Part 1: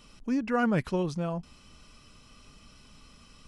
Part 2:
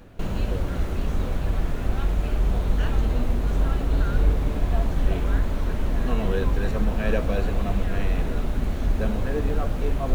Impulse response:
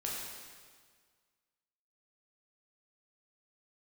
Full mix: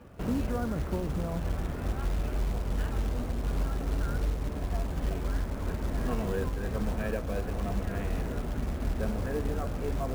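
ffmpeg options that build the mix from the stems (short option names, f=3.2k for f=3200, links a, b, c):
-filter_complex "[0:a]lowpass=1.1k,acompressor=threshold=-30dB:ratio=2.5,volume=1.5dB[a];[1:a]lowpass=1.9k,aemphasis=mode=production:type=50fm,volume=-3.5dB,asplit=2[b][c];[c]volume=-19dB[d];[2:a]atrim=start_sample=2205[e];[d][e]afir=irnorm=-1:irlink=0[f];[a][b][f]amix=inputs=3:normalize=0,highpass=f=40:w=0.5412,highpass=f=40:w=1.3066,acrusher=bits=5:mode=log:mix=0:aa=0.000001,alimiter=limit=-21dB:level=0:latency=1:release=440"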